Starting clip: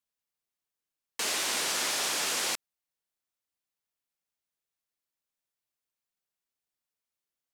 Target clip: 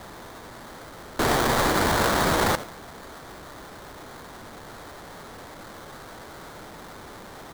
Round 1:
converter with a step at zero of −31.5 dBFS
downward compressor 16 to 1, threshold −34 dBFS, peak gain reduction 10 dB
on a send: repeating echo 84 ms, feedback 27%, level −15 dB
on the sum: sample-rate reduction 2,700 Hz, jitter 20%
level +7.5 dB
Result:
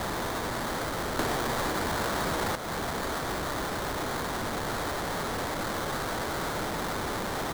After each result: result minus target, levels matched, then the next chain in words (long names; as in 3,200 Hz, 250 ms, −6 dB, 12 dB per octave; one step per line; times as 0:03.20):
downward compressor: peak gain reduction +10 dB; converter with a step at zero: distortion +9 dB
converter with a step at zero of −31.5 dBFS
on a send: repeating echo 84 ms, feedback 27%, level −15 dB
on the sum: sample-rate reduction 2,700 Hz, jitter 20%
level +7.5 dB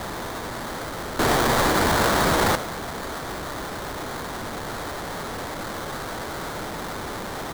converter with a step at zero: distortion +9 dB
converter with a step at zero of −42 dBFS
on a send: repeating echo 84 ms, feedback 27%, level −15 dB
on the sum: sample-rate reduction 2,700 Hz, jitter 20%
level +7.5 dB